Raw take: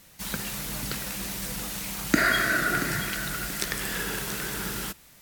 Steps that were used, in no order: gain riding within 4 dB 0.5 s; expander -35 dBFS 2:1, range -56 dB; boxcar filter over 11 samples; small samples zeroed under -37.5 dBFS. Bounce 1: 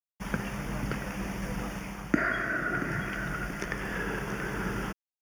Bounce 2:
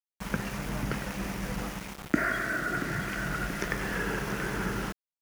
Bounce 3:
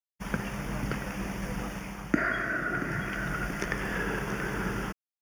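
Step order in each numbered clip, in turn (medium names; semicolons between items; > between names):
expander > gain riding > small samples zeroed > boxcar filter; boxcar filter > gain riding > expander > small samples zeroed; small samples zeroed > expander > boxcar filter > gain riding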